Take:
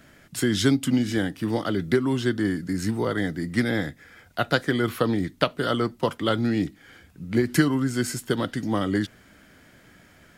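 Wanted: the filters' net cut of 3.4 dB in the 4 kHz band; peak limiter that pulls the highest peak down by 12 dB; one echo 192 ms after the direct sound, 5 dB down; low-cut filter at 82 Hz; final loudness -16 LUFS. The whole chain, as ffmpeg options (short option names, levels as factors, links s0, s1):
-af "highpass=82,equalizer=f=4000:t=o:g=-4.5,alimiter=limit=0.15:level=0:latency=1,aecho=1:1:192:0.562,volume=3.35"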